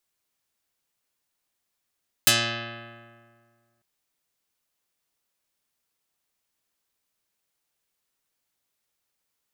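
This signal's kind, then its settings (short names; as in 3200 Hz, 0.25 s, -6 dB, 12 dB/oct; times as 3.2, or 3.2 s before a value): plucked string A#2, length 1.55 s, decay 1.95 s, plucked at 0.25, dark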